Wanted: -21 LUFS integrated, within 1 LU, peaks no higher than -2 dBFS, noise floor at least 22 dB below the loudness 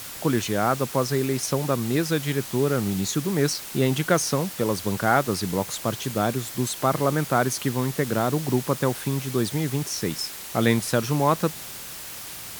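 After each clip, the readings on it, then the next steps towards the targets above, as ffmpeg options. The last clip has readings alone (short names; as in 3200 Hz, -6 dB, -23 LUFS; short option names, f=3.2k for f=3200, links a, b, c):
noise floor -38 dBFS; noise floor target -47 dBFS; loudness -24.5 LUFS; peak -4.5 dBFS; loudness target -21.0 LUFS
-> -af "afftdn=nr=9:nf=-38"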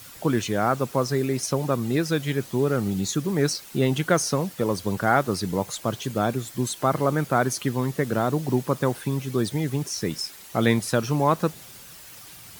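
noise floor -45 dBFS; noise floor target -47 dBFS
-> -af "afftdn=nr=6:nf=-45"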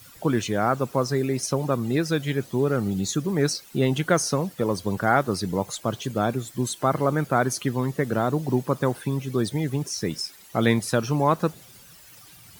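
noise floor -49 dBFS; loudness -25.0 LUFS; peak -4.5 dBFS; loudness target -21.0 LUFS
-> -af "volume=4dB,alimiter=limit=-2dB:level=0:latency=1"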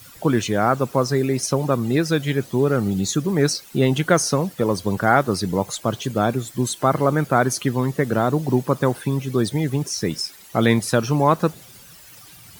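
loudness -21.0 LUFS; peak -2.0 dBFS; noise floor -45 dBFS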